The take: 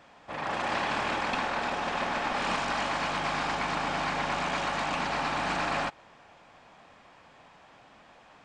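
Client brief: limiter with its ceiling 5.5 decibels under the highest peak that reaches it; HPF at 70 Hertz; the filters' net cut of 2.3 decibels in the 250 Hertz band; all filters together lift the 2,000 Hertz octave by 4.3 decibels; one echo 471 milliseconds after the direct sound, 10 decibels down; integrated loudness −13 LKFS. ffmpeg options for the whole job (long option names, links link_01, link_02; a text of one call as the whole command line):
ffmpeg -i in.wav -af "highpass=70,equalizer=frequency=250:width_type=o:gain=-3,equalizer=frequency=2000:width_type=o:gain=5.5,alimiter=limit=-20.5dB:level=0:latency=1,aecho=1:1:471:0.316,volume=16dB" out.wav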